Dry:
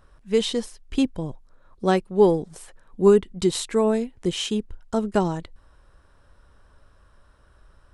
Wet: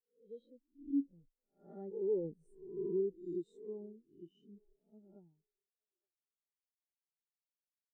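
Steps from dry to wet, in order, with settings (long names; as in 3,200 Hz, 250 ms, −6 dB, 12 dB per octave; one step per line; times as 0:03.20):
peak hold with a rise ahead of every peak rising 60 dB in 0.89 s
source passing by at 0:02.41, 16 m/s, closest 4.8 metres
brickwall limiter −20 dBFS, peak gain reduction 11 dB
tilt shelving filter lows +4.5 dB
tuned comb filter 280 Hz, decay 0.34 s, harmonics odd, mix 60%
delay with a band-pass on its return 869 ms, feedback 38%, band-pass 580 Hz, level −16 dB
downward compressor 1.5 to 1, threshold −40 dBFS, peak gain reduction 4.5 dB
high-shelf EQ 3,100 Hz +10 dB
every bin expanded away from the loudest bin 2.5 to 1
level +1.5 dB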